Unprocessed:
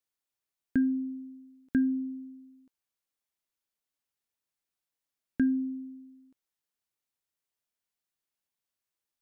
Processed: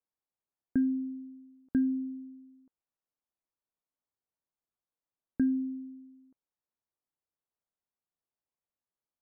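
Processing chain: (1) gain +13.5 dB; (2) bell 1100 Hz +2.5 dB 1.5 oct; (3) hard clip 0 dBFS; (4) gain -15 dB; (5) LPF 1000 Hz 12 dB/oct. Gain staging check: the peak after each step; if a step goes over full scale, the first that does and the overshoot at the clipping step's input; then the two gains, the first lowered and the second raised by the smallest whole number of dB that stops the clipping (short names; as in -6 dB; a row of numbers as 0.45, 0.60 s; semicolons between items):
-3.5, -3.0, -3.0, -18.0, -19.0 dBFS; no overload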